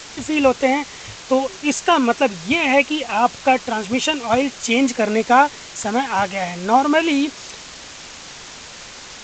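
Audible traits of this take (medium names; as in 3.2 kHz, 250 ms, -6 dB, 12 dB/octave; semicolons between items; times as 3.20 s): a quantiser's noise floor 6-bit, dither triangular; G.722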